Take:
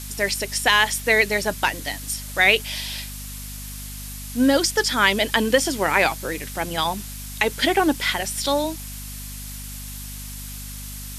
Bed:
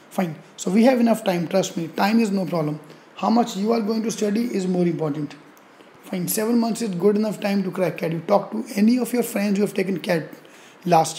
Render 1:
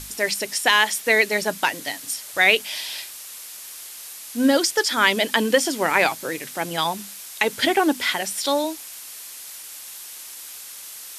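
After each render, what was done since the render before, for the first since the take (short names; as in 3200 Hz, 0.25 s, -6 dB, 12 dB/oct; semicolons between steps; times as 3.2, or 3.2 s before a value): notches 50/100/150/200/250 Hz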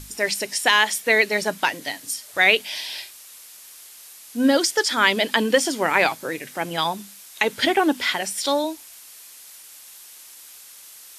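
noise print and reduce 6 dB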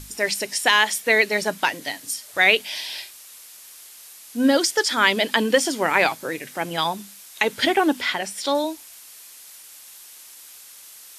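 8.01–8.55 high shelf 5000 Hz -6.5 dB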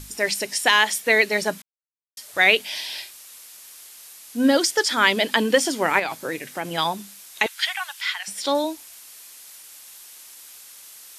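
1.62–2.17 mute; 5.99–6.66 compressor, threshold -21 dBFS; 7.46–8.28 Bessel high-pass 1600 Hz, order 8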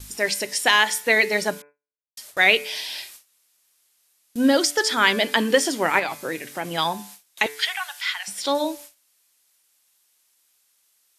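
de-hum 145.6 Hz, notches 18; gate with hold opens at -30 dBFS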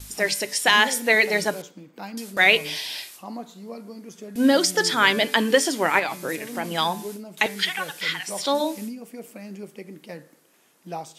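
add bed -17 dB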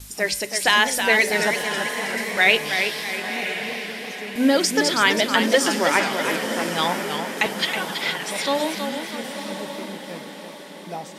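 diffused feedback echo 1.024 s, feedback 46%, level -9 dB; warbling echo 0.325 s, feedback 47%, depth 117 cents, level -7 dB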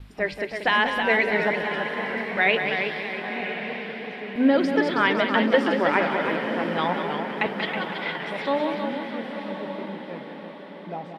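air absorption 430 m; echo 0.186 s -8 dB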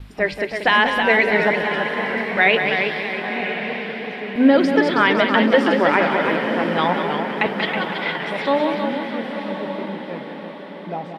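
gain +5.5 dB; limiter -3 dBFS, peak gain reduction 2.5 dB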